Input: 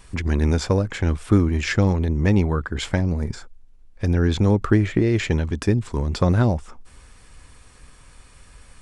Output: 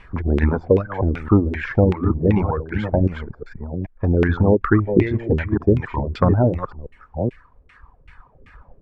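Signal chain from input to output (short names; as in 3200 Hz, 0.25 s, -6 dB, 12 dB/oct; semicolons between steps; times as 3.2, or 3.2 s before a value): reverse delay 0.429 s, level -5.5 dB; LFO low-pass saw down 2.6 Hz 390–2400 Hz; reverb removal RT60 1.6 s; gain +2 dB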